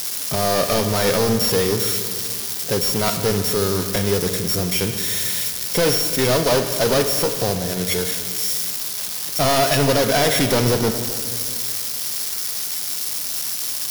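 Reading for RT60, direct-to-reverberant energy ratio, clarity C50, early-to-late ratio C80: 2.2 s, 7.0 dB, 7.5 dB, 8.5 dB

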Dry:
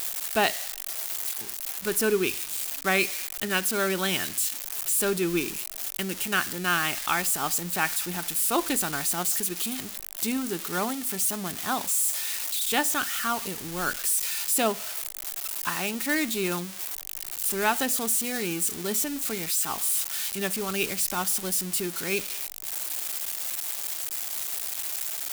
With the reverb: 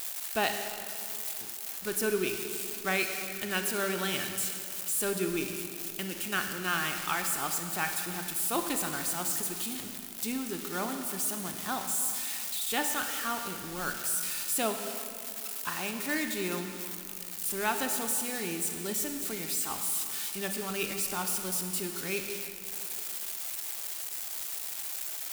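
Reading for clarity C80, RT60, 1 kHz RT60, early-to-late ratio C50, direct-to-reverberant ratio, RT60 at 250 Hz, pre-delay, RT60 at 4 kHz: 6.5 dB, 2.6 s, 2.5 s, 6.0 dB, 5.0 dB, 2.9 s, 27 ms, 2.0 s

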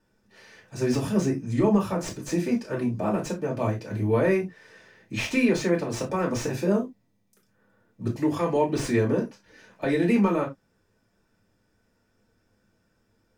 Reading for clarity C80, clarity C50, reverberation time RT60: 23.0 dB, 13.5 dB, not exponential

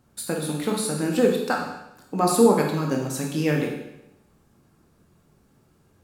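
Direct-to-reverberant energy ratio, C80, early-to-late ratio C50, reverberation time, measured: -0.5 dB, 6.5 dB, 3.5 dB, 0.85 s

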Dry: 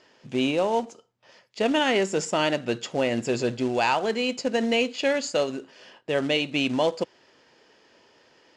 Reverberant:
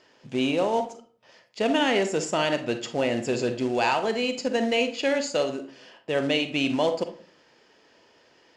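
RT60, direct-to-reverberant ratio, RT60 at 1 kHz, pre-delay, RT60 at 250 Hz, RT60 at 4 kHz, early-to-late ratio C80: 0.45 s, 8.5 dB, 0.40 s, 37 ms, 0.55 s, 0.25 s, 16.0 dB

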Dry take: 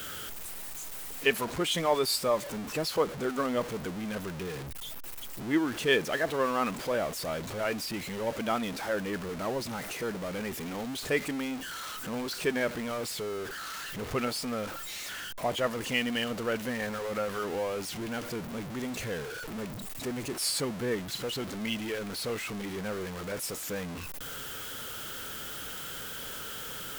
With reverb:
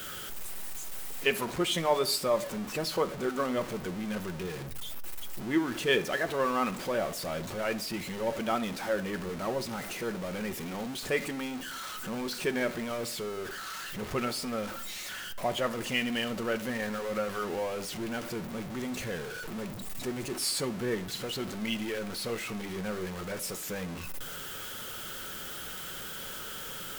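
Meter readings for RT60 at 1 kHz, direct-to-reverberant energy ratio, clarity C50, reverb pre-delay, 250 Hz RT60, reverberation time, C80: 0.60 s, 8.5 dB, 17.0 dB, 5 ms, 1.1 s, 0.70 s, 21.5 dB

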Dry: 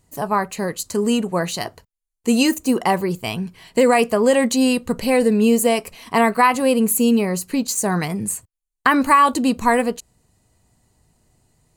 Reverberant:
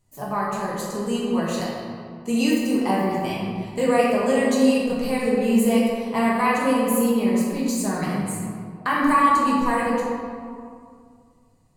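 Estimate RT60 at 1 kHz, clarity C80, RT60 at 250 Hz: 2.2 s, 0.5 dB, 2.5 s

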